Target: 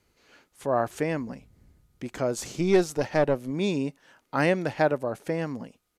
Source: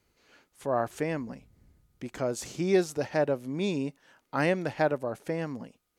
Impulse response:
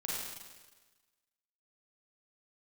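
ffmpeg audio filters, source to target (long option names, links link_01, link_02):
-filter_complex "[0:a]asettb=1/sr,asplit=3[link_01][link_02][link_03];[link_01]atrim=end=2.374[link_04];[link_02]atrim=start=2.37:end=3.51,asetpts=PTS-STARTPTS,afade=type=in:duration=0.004:curve=qsin,afade=type=out:start_time=1.136:duration=0.004:curve=qsin,aeval=exprs='0.224*(cos(1*acos(clip(val(0)/0.224,-1,1)))-cos(1*PI/2))+0.0126*(cos(6*acos(clip(val(0)/0.224,-1,1)))-cos(6*PI/2))':channel_layout=same[link_05];[link_03]atrim=start=3.506[link_06];[link_04][link_05]acrossfade=duration=0.004:curve1=hsin:curve2=qsin[link_07];[link_07][link_06]acrossfade=duration=0.004:curve1=qsin:curve2=hsin,aresample=32000,aresample=44100,volume=3dB"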